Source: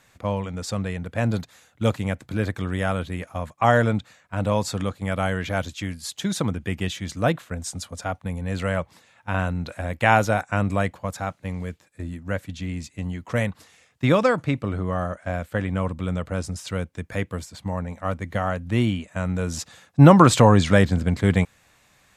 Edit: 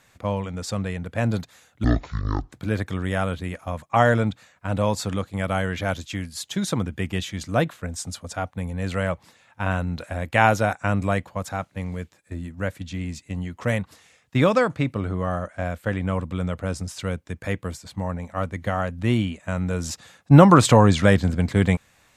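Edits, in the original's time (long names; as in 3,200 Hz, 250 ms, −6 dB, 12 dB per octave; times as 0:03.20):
0:01.84–0:02.20: play speed 53%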